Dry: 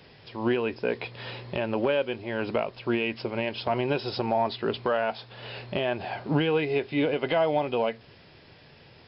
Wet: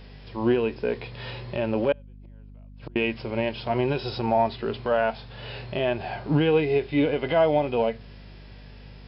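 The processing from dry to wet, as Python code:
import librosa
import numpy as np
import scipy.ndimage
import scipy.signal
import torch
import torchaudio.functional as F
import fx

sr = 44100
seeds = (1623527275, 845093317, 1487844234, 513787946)

y = fx.hpss(x, sr, part='percussive', gain_db=-10)
y = fx.gate_flip(y, sr, shuts_db=-30.0, range_db=-36, at=(1.92, 2.96))
y = fx.add_hum(y, sr, base_hz=50, snr_db=19)
y = F.gain(torch.from_numpy(y), 4.5).numpy()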